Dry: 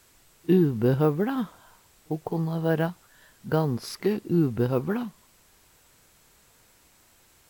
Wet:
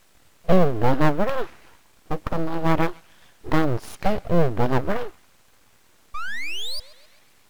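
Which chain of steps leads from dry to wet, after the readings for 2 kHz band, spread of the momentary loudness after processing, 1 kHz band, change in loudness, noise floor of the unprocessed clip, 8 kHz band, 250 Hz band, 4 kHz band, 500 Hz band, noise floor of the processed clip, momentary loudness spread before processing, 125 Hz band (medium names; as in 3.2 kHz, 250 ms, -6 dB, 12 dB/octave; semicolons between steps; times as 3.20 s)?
+8.5 dB, 14 LU, +9.5 dB, +1.5 dB, -60 dBFS, +3.5 dB, 0.0 dB, +10.0 dB, +2.5 dB, -57 dBFS, 13 LU, +1.0 dB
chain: treble shelf 4.3 kHz -9.5 dB; painted sound rise, 6.14–6.80 s, 570–2500 Hz -31 dBFS; band-passed feedback delay 132 ms, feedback 56%, band-pass 2.2 kHz, level -20.5 dB; full-wave rectifier; trim +6.5 dB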